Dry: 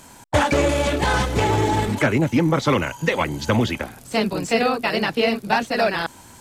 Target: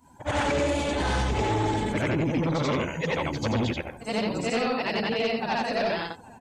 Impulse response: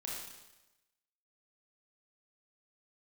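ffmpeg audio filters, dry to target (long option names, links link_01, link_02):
-af "afftfilt=real='re':imag='-im':win_size=8192:overlap=0.75,adynamicequalizer=threshold=0.00708:dfrequency=1400:dqfactor=2.1:tfrequency=1400:tqfactor=2.1:attack=5:release=100:ratio=0.375:range=2.5:mode=cutabove:tftype=bell,asoftclip=type=hard:threshold=-21dB,aecho=1:1:751|1502|2253:0.0841|0.0303|0.0109,afftdn=noise_reduction=17:noise_floor=-47"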